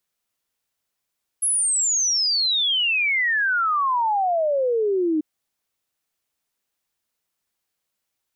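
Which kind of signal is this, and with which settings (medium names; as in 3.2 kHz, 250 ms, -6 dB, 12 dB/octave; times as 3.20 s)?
log sweep 11 kHz -> 300 Hz 3.79 s -18 dBFS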